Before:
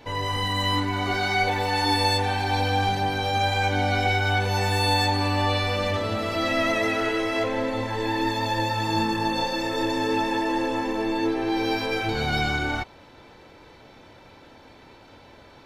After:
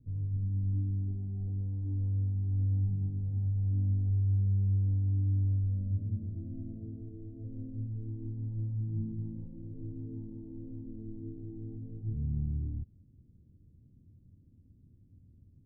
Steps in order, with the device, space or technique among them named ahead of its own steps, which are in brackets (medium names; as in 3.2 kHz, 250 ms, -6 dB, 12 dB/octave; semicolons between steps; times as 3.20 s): the neighbour's flat through the wall (low-pass 210 Hz 24 dB/octave; peaking EQ 88 Hz +6 dB 0.99 oct); trim -5.5 dB